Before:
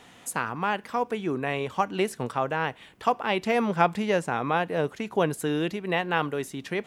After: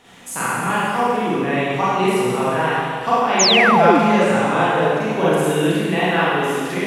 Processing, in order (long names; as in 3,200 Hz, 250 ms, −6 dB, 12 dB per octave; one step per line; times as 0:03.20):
four-comb reverb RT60 2 s, combs from 33 ms, DRR −10 dB
sound drawn into the spectrogram fall, 0:03.39–0:03.99, 250–7,300 Hz −14 dBFS
level −1 dB